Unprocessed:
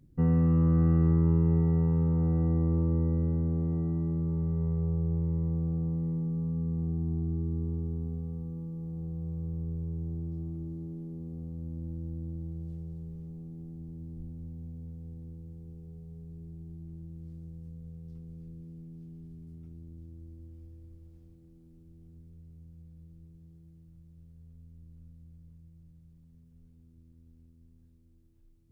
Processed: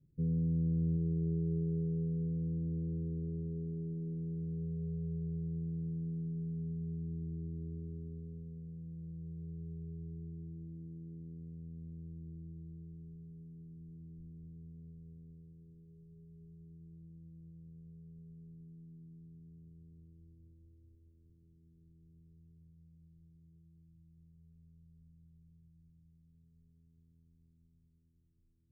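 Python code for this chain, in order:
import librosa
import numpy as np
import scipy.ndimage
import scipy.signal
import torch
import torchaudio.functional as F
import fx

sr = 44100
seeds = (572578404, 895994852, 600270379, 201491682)

y = scipy.signal.sosfilt(scipy.signal.cheby1(6, 9, 570.0, 'lowpass', fs=sr, output='sos'), x)
y = y + 10.0 ** (-9.0 / 20.0) * np.pad(y, (int(784 * sr / 1000.0), 0))[:len(y)]
y = y * librosa.db_to_amplitude(-6.5)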